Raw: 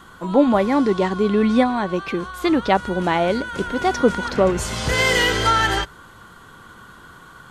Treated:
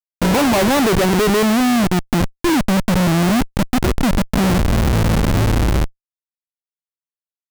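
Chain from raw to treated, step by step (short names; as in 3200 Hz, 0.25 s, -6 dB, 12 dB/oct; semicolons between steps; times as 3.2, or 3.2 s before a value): low-pass sweep 1600 Hz -> 220 Hz, 0.05–2.01; Schmitt trigger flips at -25 dBFS; gain +5 dB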